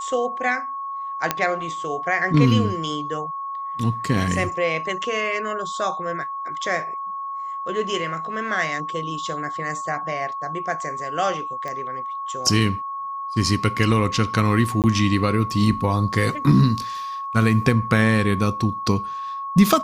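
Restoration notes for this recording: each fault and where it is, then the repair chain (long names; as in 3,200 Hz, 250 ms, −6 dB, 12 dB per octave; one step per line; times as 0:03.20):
whistle 1,100 Hz −27 dBFS
0:01.31: click −4 dBFS
0:11.68: click −18 dBFS
0:14.82–0:14.84: drop-out 18 ms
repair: click removal
notch filter 1,100 Hz, Q 30
repair the gap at 0:14.82, 18 ms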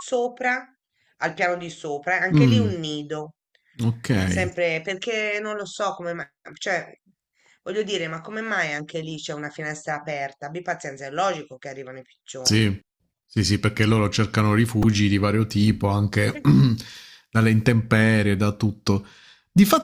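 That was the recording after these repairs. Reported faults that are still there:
none of them is left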